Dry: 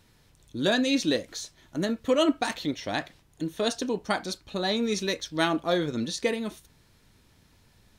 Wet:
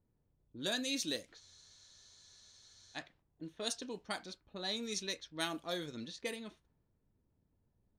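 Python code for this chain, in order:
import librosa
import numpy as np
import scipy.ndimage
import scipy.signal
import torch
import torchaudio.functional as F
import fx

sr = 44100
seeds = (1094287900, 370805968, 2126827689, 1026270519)

y = fx.env_lowpass(x, sr, base_hz=550.0, full_db=-21.5)
y = librosa.effects.preemphasis(y, coef=0.8, zi=[0.0])
y = fx.spec_freeze(y, sr, seeds[0], at_s=1.42, hold_s=1.54)
y = y * 10.0 ** (-1.5 / 20.0)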